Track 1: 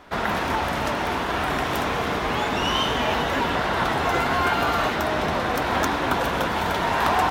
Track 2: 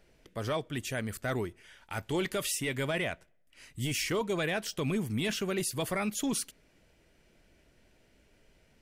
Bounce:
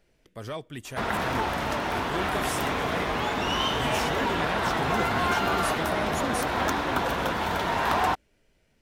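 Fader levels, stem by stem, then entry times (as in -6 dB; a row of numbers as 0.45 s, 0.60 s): -3.5 dB, -3.0 dB; 0.85 s, 0.00 s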